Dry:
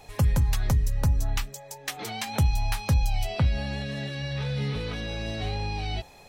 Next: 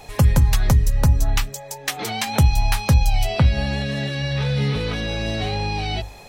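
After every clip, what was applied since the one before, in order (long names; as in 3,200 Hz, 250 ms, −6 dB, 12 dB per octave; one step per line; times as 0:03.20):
mains-hum notches 50/100 Hz
level +8 dB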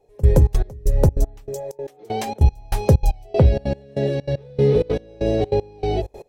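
drawn EQ curve 250 Hz 0 dB, 410 Hz +15 dB, 1,200 Hz −10 dB, 4,200 Hz −11 dB, 6,000 Hz −8 dB
gate pattern "...xxx.x" 193 BPM −24 dB
level +1.5 dB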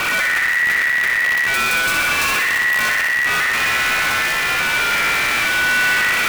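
sign of each sample alone
ring modulation 1,900 Hz
feedback echo with a high-pass in the loop 62 ms, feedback 70%, high-pass 480 Hz, level −4 dB
level +2 dB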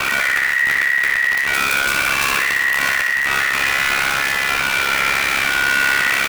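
ring modulation 34 Hz
double-tracking delay 22 ms −11 dB
level +2.5 dB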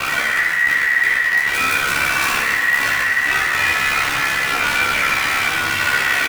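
multi-voice chorus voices 2, 0.53 Hz, delay 15 ms, depth 3 ms
single-tap delay 909 ms −14.5 dB
convolution reverb RT60 1.5 s, pre-delay 5 ms, DRR 2 dB
level +1 dB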